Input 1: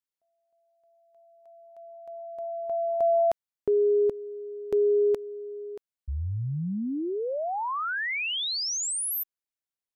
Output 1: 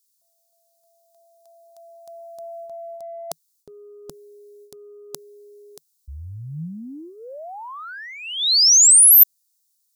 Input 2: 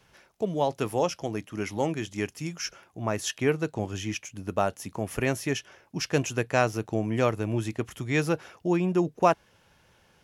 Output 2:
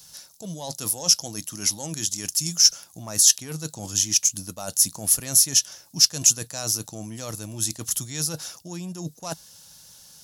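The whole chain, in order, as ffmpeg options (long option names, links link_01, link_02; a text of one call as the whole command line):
ffmpeg -i in.wav -af "aeval=exprs='0.447*(cos(1*acos(clip(val(0)/0.447,-1,1)))-cos(1*PI/2))+0.02*(cos(5*acos(clip(val(0)/0.447,-1,1)))-cos(5*PI/2))':channel_layout=same,areverse,acompressor=threshold=-33dB:ratio=16:attack=64:release=96:knee=1:detection=rms,areverse,equalizer=frequency=160:width_type=o:width=0.33:gain=6,equalizer=frequency=400:width_type=o:width=0.33:gain=-10,equalizer=frequency=3150:width_type=o:width=0.33:gain=-5,aexciter=amount=9.9:drive=6.8:freq=3500,volume=-1.5dB" out.wav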